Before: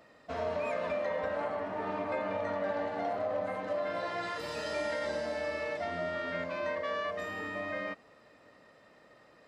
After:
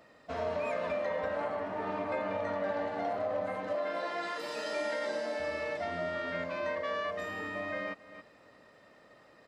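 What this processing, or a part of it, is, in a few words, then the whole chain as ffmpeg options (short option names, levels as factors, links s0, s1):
ducked delay: -filter_complex "[0:a]asettb=1/sr,asplit=3[s0][s1][s2];[s0]atrim=end=3.754[s3];[s1]atrim=start=3.75:end=5.4,asetpts=PTS-STARTPTS,afade=t=in:d=0.004:c=qsin,afade=t=out:st=1.646:d=0.004:c=qsin,highpass=f=210:w=0.5412,highpass=f=210:w=1.3066[s4];[s2]atrim=start=5.396[s5];[s3][s4]acrossfade=d=0.004:c1=hsin:c2=qsin[s6];[s6][s5]acrossfade=d=0.004:c1=qsin:c2=hsin,asplit=3[s7][s8][s9];[s8]adelay=273,volume=0.398[s10];[s9]apad=whole_len=430074[s11];[s10][s11]sidechaincompress=threshold=0.00158:ratio=8:attack=16:release=204[s12];[s7][s12]amix=inputs=2:normalize=0"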